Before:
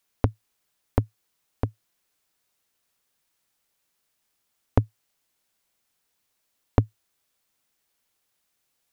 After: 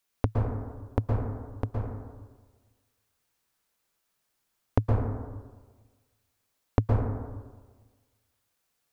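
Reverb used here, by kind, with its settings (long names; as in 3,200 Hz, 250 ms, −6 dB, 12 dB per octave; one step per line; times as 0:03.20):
dense smooth reverb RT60 1.4 s, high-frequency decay 0.3×, pre-delay 105 ms, DRR −1 dB
level −4 dB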